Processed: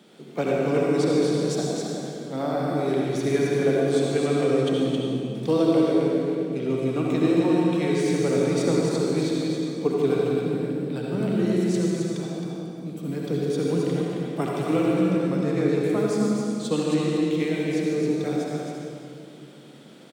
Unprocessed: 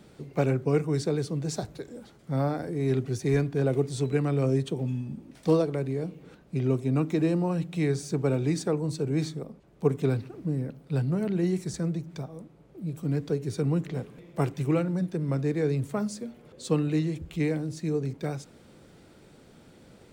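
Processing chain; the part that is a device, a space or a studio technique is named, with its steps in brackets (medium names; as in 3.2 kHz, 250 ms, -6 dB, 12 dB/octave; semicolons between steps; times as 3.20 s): stadium PA (high-pass 180 Hz 24 dB/octave; peaking EQ 3.3 kHz +7.5 dB 0.38 oct; loudspeakers at several distances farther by 51 m -11 dB, 92 m -5 dB; reverberation RT60 2.4 s, pre-delay 58 ms, DRR -2.5 dB)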